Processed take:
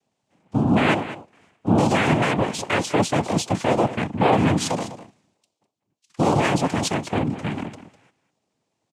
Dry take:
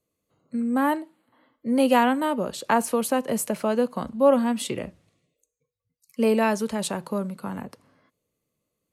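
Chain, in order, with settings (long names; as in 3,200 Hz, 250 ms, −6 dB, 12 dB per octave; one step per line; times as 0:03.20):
notch filter 590 Hz, Q 12
brickwall limiter −17 dBFS, peak gain reduction 9 dB
cochlear-implant simulation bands 4
on a send: single-tap delay 202 ms −14 dB
on the sum: level +6 dB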